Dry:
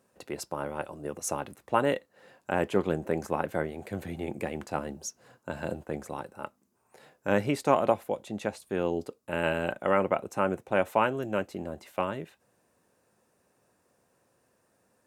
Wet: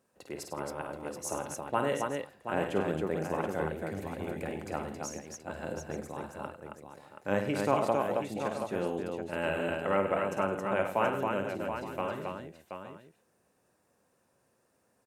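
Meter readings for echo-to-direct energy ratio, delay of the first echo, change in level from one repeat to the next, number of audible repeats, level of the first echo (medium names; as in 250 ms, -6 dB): -0.5 dB, 51 ms, no regular repeats, 6, -7.0 dB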